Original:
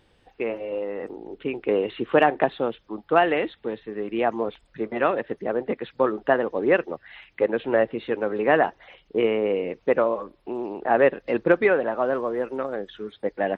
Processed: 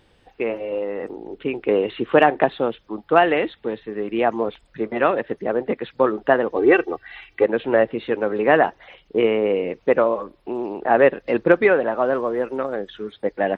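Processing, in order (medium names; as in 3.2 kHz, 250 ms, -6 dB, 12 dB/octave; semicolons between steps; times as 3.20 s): 6.56–7.44 s: comb 2.6 ms, depth 78%; trim +3.5 dB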